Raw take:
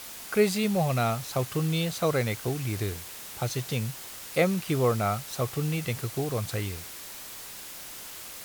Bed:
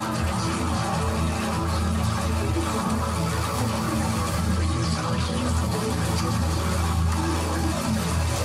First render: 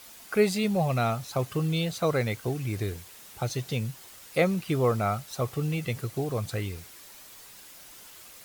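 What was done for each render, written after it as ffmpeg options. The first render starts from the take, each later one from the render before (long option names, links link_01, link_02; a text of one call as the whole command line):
ffmpeg -i in.wav -af "afftdn=noise_reduction=8:noise_floor=-42" out.wav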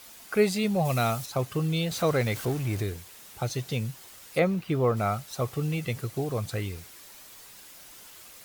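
ffmpeg -i in.wav -filter_complex "[0:a]asettb=1/sr,asplit=3[link_01][link_02][link_03];[link_01]atrim=end=0.854[link_04];[link_02]atrim=start=0.85:end=1.26,asetpts=PTS-STARTPTS,afade=type=in:duration=0.004:curve=qsin,afade=type=out:start_time=0.406:duration=0.004:curve=qsin,highshelf=frequency=4400:gain=10[link_05];[link_03]atrim=start=1.256[link_06];[link_04][link_05]acrossfade=duration=0.004:curve1=hsin:curve2=qsin[link_07];[link_07][link_06]acrossfade=duration=0.004:curve1=qsin:curve2=hsin,asettb=1/sr,asplit=3[link_08][link_09][link_10];[link_08]atrim=end=1.914[link_11];[link_09]atrim=start=1.91:end=2.82,asetpts=PTS-STARTPTS,afade=type=in:duration=0.004:curve=qsin,afade=type=out:start_time=0.906:duration=0.004:curve=qsin,aeval=exprs='val(0)+0.5*0.0178*sgn(val(0))':channel_layout=same[link_12];[link_10]atrim=start=2.816[link_13];[link_11][link_12]acrossfade=duration=0.004:curve1=hsin:curve2=qsin[link_14];[link_14][link_13]acrossfade=duration=0.004:curve1=qsin:curve2=hsin,asettb=1/sr,asplit=3[link_15][link_16][link_17];[link_15]atrim=end=4.394[link_18];[link_16]atrim=start=4.39:end=4.97,asetpts=PTS-STARTPTS,afade=type=in:duration=0.004:curve=qsin,afade=type=out:start_time=0.576:duration=0.004:curve=qsin,equalizer=frequency=9600:width_type=o:width=2.3:gain=-9[link_19];[link_17]atrim=start=4.966[link_20];[link_18][link_19]acrossfade=duration=0.004:curve1=hsin:curve2=qsin[link_21];[link_21][link_20]acrossfade=duration=0.004:curve1=qsin:curve2=hsin" out.wav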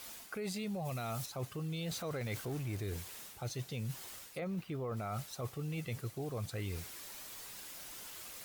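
ffmpeg -i in.wav -af "alimiter=limit=-21.5dB:level=0:latency=1:release=13,areverse,acompressor=threshold=-37dB:ratio=6,areverse" out.wav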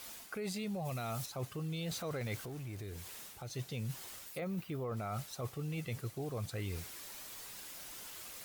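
ffmpeg -i in.wav -filter_complex "[0:a]asplit=3[link_01][link_02][link_03];[link_01]afade=type=out:start_time=2.35:duration=0.02[link_04];[link_02]acompressor=threshold=-43dB:ratio=2.5:attack=3.2:release=140:knee=1:detection=peak,afade=type=in:start_time=2.35:duration=0.02,afade=type=out:start_time=3.52:duration=0.02[link_05];[link_03]afade=type=in:start_time=3.52:duration=0.02[link_06];[link_04][link_05][link_06]amix=inputs=3:normalize=0,asettb=1/sr,asplit=3[link_07][link_08][link_09];[link_07]atrim=end=4.264[link_10];[link_08]atrim=start=4.26:end=4.84,asetpts=PTS-STARTPTS,afade=type=in:duration=0.004:curve=qsin,afade=type=out:start_time=0.576:duration=0.004:curve=qsin,highshelf=frequency=11000:gain=9.5[link_11];[link_09]atrim=start=4.836[link_12];[link_10][link_11]acrossfade=duration=0.004:curve1=hsin:curve2=qsin[link_13];[link_13][link_12]acrossfade=duration=0.004:curve1=qsin:curve2=hsin" out.wav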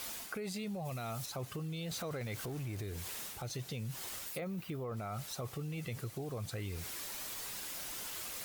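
ffmpeg -i in.wav -filter_complex "[0:a]asplit=2[link_01][link_02];[link_02]alimiter=level_in=15dB:limit=-24dB:level=0:latency=1,volume=-15dB,volume=1dB[link_03];[link_01][link_03]amix=inputs=2:normalize=0,acompressor=threshold=-37dB:ratio=6" out.wav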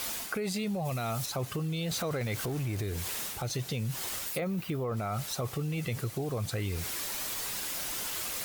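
ffmpeg -i in.wav -af "volume=7.5dB" out.wav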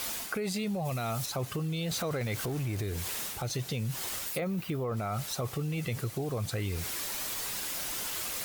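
ffmpeg -i in.wav -af anull out.wav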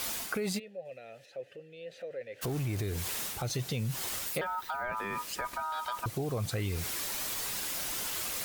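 ffmpeg -i in.wav -filter_complex "[0:a]asplit=3[link_01][link_02][link_03];[link_01]afade=type=out:start_time=0.58:duration=0.02[link_04];[link_02]asplit=3[link_05][link_06][link_07];[link_05]bandpass=frequency=530:width_type=q:width=8,volume=0dB[link_08];[link_06]bandpass=frequency=1840:width_type=q:width=8,volume=-6dB[link_09];[link_07]bandpass=frequency=2480:width_type=q:width=8,volume=-9dB[link_10];[link_08][link_09][link_10]amix=inputs=3:normalize=0,afade=type=in:start_time=0.58:duration=0.02,afade=type=out:start_time=2.41:duration=0.02[link_11];[link_03]afade=type=in:start_time=2.41:duration=0.02[link_12];[link_04][link_11][link_12]amix=inputs=3:normalize=0,asettb=1/sr,asplit=3[link_13][link_14][link_15];[link_13]atrim=end=4.414[link_16];[link_14]atrim=start=4.41:end=6.06,asetpts=PTS-STARTPTS,afade=type=in:duration=0.004:curve=qsin,afade=type=out:start_time=1.646:duration=0.004:curve=qsin,aeval=exprs='val(0)*sin(2*PI*1100*n/s)':channel_layout=same[link_17];[link_15]atrim=start=6.056[link_18];[link_16][link_17]acrossfade=duration=0.004:curve1=hsin:curve2=qsin[link_19];[link_19][link_18]acrossfade=duration=0.004:curve1=qsin:curve2=hsin" out.wav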